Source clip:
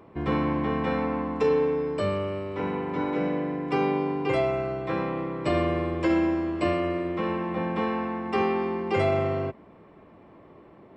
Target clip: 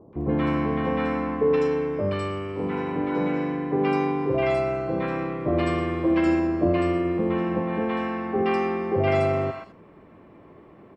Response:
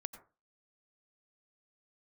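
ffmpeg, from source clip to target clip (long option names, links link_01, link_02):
-filter_complex "[0:a]asettb=1/sr,asplit=3[link_01][link_02][link_03];[link_01]atrim=end=6.264[link_04];[link_02]atrim=start=6.26:end=7.6,asetpts=PTS-STARTPTS,afade=type=in:duration=0.004:curve=qsin,afade=type=out:start_time=1.336:duration=0.004:curve=qsin,tiltshelf=frequency=970:gain=3.5[link_05];[link_03]atrim=start=7.596[link_06];[link_04][link_05]acrossfade=duration=0.004:curve1=hsin:curve2=qsin[link_07];[link_07][link_06]acrossfade=duration=0.004:curve1=qsin:curve2=hsin,acrossover=split=800|4100[link_08][link_09][link_10];[link_09]adelay=130[link_11];[link_10]adelay=210[link_12];[link_08][link_11][link_12]amix=inputs=3:normalize=0[link_13];[1:a]atrim=start_sample=2205,atrim=end_sample=3969[link_14];[link_13][link_14]afir=irnorm=-1:irlink=0,volume=5.5dB"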